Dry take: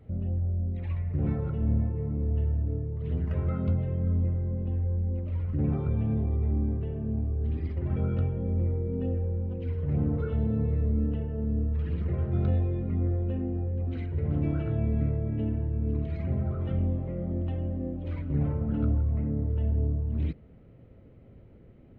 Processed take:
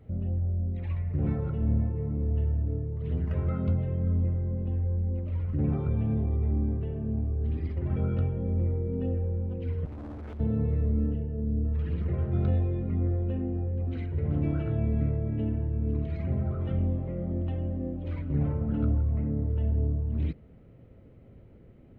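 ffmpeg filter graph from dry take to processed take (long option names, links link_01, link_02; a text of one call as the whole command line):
ffmpeg -i in.wav -filter_complex "[0:a]asettb=1/sr,asplit=3[link_01][link_02][link_03];[link_01]atrim=end=9.854[link_04];[link_02]atrim=start=9.85:end=10.4,asetpts=PTS-STARTPTS,afade=type=in:duration=0.004:curve=qsin,afade=type=out:start_time=0.546:duration=0.004:curve=qsin,aecho=1:1:3.2:0.98,atrim=end_sample=24255,acompressor=threshold=-28dB:ratio=16:attack=3.2:release=140:knee=1:detection=peak,asoftclip=type=hard:threshold=-37.5dB[link_05];[link_03]atrim=start=10.396[link_06];[link_04][link_05]acrossfade=duration=0.004:curve1=hsin:curve2=qsin[link_07];[link_07][link_06]acrossfade=duration=0.004:curve1=qsin:curve2=hsin,asettb=1/sr,asplit=3[link_08][link_09][link_10];[link_08]atrim=end=11.134[link_11];[link_09]atrim=start=11.13:end=11.65,asetpts=PTS-STARTPTS,afade=type=in:duration=0.004:curve=qsin,afade=type=out:start_time=0.516:duration=0.004:curve=qsin,lowpass=frequency=1500:poles=1,equalizer=frequency=1100:width=1.3:gain=-11[link_12];[link_10]atrim=start=11.646[link_13];[link_11][link_12]acrossfade=duration=0.004:curve1=hsin:curve2=qsin[link_14];[link_14][link_13]acrossfade=duration=0.004:curve1=qsin:curve2=hsin" out.wav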